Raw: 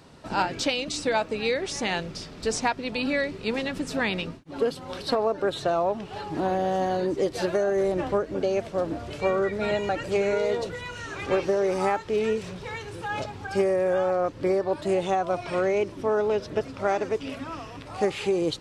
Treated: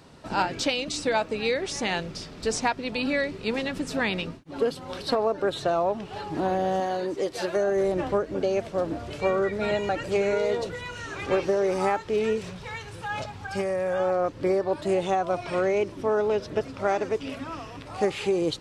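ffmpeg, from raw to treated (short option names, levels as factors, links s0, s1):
-filter_complex "[0:a]asettb=1/sr,asplit=3[s0][s1][s2];[s0]atrim=end=6.804[s3];[s1]atrim=start=6.8:end=7.56,asetpts=PTS-STARTPTS,afade=t=in:d=0.004:c=qsin,afade=t=out:st=0.756:d=0.004:c=qsin,lowshelf=f=250:g=-10.5[s4];[s2]atrim=start=7.556[s5];[s3][s4]acrossfade=d=0.004:c1=hsin:c2=qsin[s6];[s6][s5]acrossfade=d=0.004:c1=qsin:c2=hsin,asettb=1/sr,asplit=3[s7][s8][s9];[s7]atrim=end=12.504[s10];[s8]atrim=start=12.5:end=14,asetpts=PTS-STARTPTS,afade=t=in:d=0.004:c=qsin,afade=t=out:st=1.496:d=0.004:c=qsin,equalizer=f=360:w=1.5:g=-8[s11];[s9]atrim=start=13.996[s12];[s10][s11]acrossfade=d=0.004:c1=hsin:c2=qsin[s13];[s13][s12]acrossfade=d=0.004:c1=qsin:c2=hsin"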